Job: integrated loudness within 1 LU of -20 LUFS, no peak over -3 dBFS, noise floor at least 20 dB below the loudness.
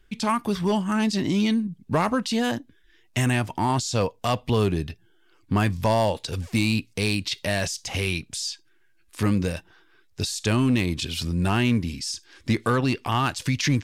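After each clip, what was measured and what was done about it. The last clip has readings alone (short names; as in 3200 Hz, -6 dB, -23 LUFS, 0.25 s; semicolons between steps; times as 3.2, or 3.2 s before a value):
clipped 0.4%; flat tops at -14.5 dBFS; loudness -25.0 LUFS; peak -14.5 dBFS; loudness target -20.0 LUFS
-> clip repair -14.5 dBFS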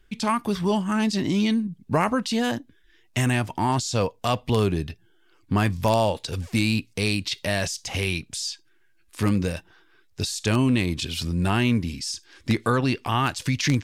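clipped 0.0%; loudness -24.5 LUFS; peak -5.5 dBFS; loudness target -20.0 LUFS
-> gain +4.5 dB; limiter -3 dBFS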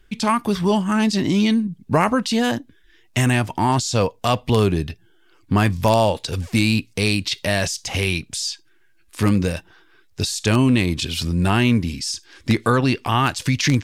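loudness -20.0 LUFS; peak -3.0 dBFS; noise floor -55 dBFS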